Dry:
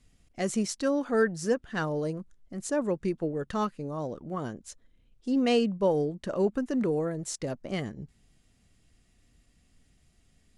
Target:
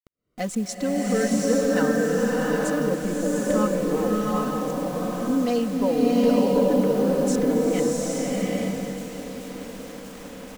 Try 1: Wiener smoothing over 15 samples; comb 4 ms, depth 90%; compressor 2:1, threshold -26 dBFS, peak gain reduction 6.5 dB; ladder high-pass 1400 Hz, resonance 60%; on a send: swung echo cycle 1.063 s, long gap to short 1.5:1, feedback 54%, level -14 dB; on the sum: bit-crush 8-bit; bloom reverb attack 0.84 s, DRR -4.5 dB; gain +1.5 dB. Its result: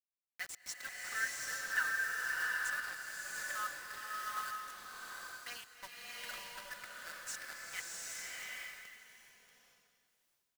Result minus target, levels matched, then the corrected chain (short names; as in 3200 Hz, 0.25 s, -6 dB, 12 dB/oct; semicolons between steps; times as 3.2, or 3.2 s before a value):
1000 Hz band +3.0 dB
Wiener smoothing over 15 samples; comb 4 ms, depth 90%; compressor 2:1, threshold -26 dBFS, peak gain reduction 6.5 dB; on a send: swung echo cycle 1.063 s, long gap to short 1.5:1, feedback 54%, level -14 dB; on the sum: bit-crush 8-bit; bloom reverb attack 0.84 s, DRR -4.5 dB; gain +1.5 dB